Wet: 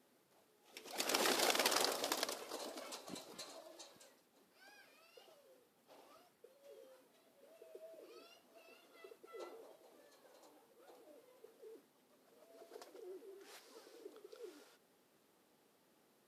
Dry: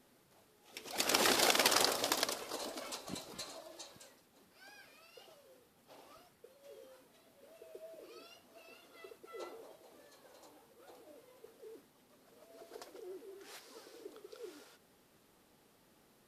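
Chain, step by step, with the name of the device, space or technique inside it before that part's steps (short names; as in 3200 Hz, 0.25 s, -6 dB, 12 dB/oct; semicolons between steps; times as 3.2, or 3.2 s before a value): filter by subtraction (in parallel: LPF 340 Hz 12 dB/oct + phase invert); on the sum: gain -6 dB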